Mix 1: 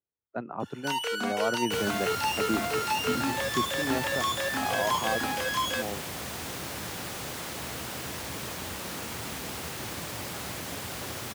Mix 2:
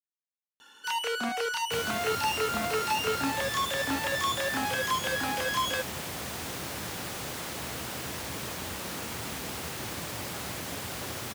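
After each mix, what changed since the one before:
speech: muted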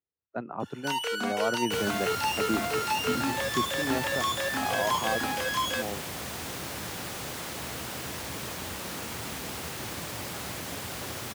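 speech: unmuted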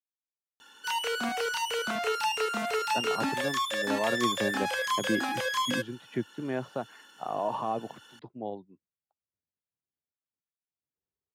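speech: entry +2.60 s; second sound: muted

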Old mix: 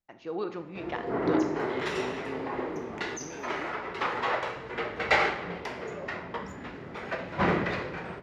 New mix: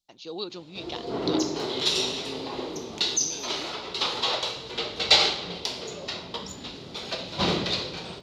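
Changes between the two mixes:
first voice: send off; master: add resonant high shelf 2.7 kHz +13.5 dB, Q 3

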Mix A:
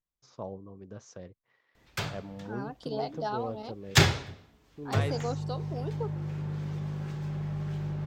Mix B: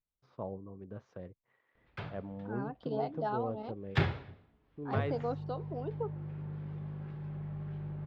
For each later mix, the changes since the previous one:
background -6.5 dB; master: add distance through air 410 m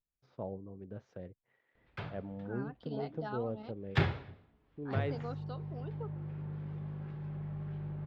first voice: add peaking EQ 1.1 kHz -8.5 dB 0.4 oct; second voice: add high-order bell 520 Hz -8.5 dB 2.3 oct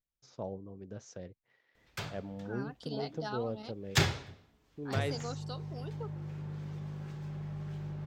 master: remove distance through air 410 m

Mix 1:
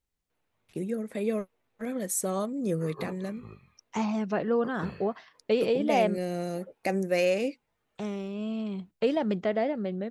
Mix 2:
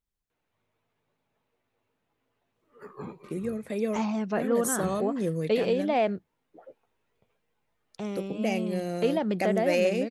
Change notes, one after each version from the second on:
first voice: entry +2.55 s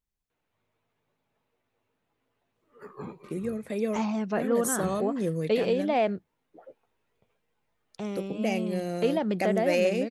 no change

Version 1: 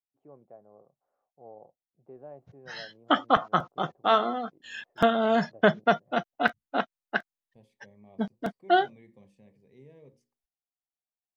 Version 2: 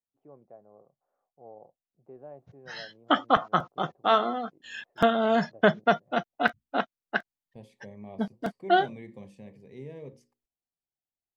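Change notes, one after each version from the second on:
second voice +10.5 dB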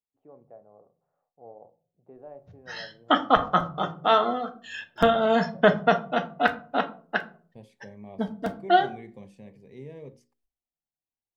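reverb: on, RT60 0.45 s

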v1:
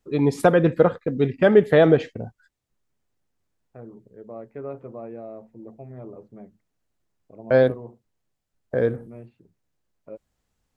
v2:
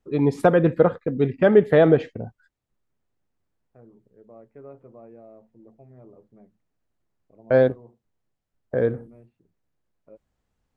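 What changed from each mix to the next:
second voice -9.0 dB; master: add treble shelf 3.4 kHz -9 dB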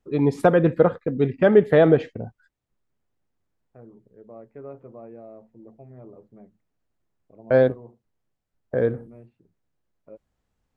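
second voice +4.0 dB

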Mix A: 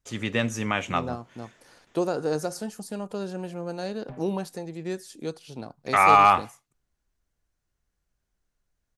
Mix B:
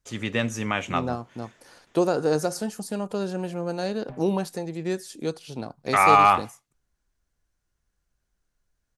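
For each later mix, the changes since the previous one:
second voice +4.0 dB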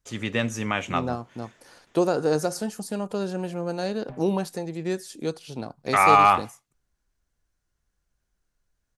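no change

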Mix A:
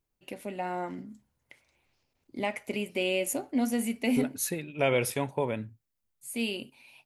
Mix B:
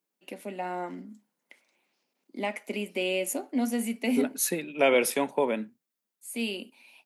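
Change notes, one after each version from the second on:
second voice +4.0 dB; master: add steep high-pass 180 Hz 48 dB/octave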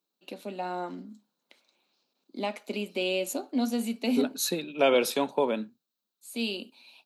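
master: add graphic EQ with 31 bands 1.25 kHz +3 dB, 2 kHz -11 dB, 4 kHz +12 dB, 10 kHz -9 dB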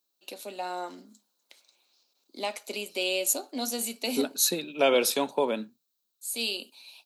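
first voice: add tone controls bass -13 dB, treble +5 dB; master: add tone controls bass -3 dB, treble +7 dB

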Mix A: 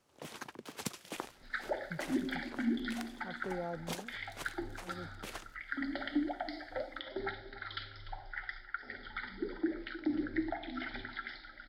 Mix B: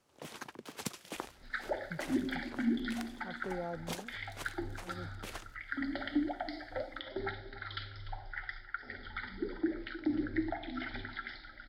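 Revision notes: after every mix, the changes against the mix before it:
second sound: add peaking EQ 68 Hz +8.5 dB 1.9 oct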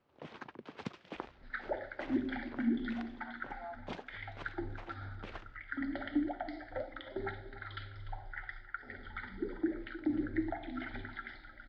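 speech: add steep high-pass 620 Hz 96 dB/octave; first sound: add steep low-pass 9 kHz 72 dB/octave; master: add distance through air 310 m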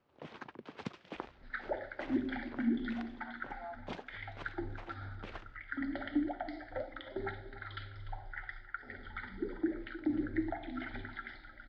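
no change

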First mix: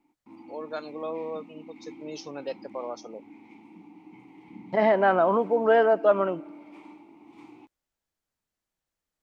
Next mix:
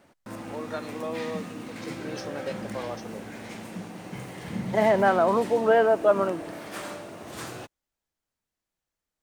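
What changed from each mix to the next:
background: remove vowel filter u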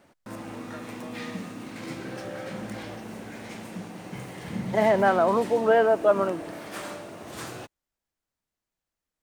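first voice -11.0 dB

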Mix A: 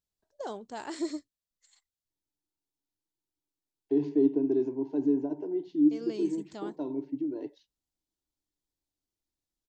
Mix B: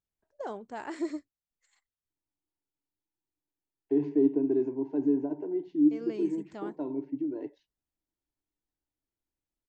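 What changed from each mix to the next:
master: add resonant high shelf 2.9 kHz -7.5 dB, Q 1.5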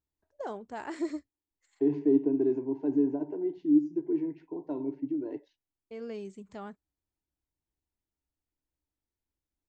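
second voice: entry -2.10 s; master: add peaking EQ 70 Hz +8.5 dB 0.71 oct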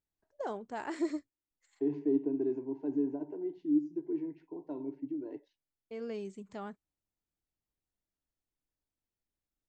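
second voice -5.5 dB; master: add peaking EQ 70 Hz -8.5 dB 0.71 oct

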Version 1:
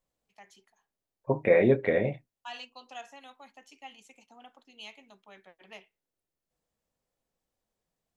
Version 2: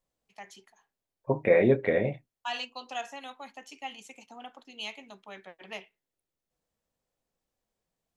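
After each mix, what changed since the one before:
first voice +7.5 dB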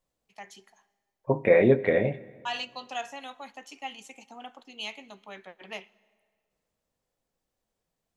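reverb: on, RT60 2.0 s

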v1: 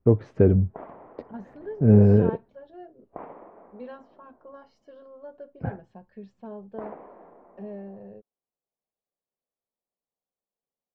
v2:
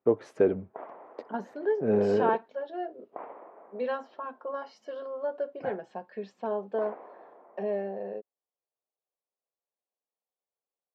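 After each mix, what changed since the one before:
first voice: remove distance through air 130 m; second voice +12.0 dB; master: add high-pass 420 Hz 12 dB/octave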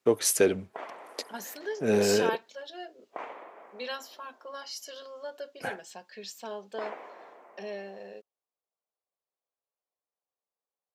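second voice -8.5 dB; master: remove low-pass 1 kHz 12 dB/octave

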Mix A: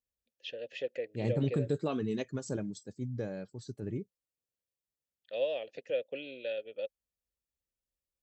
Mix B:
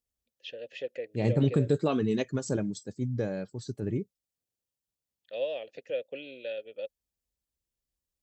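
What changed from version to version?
second voice +6.0 dB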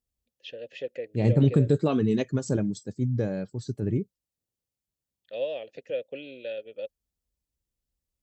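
master: add bass shelf 310 Hz +6.5 dB

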